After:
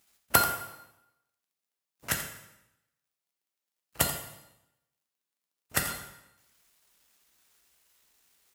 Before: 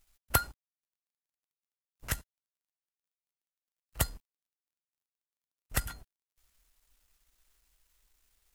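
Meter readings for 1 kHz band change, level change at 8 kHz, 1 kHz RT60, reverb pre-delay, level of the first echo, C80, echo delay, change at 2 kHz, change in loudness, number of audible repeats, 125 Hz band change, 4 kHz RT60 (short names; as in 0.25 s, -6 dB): +7.0 dB, +6.5 dB, 0.90 s, 4 ms, -12.0 dB, 8.0 dB, 85 ms, +6.5 dB, +4.5 dB, 1, -1.5 dB, 0.80 s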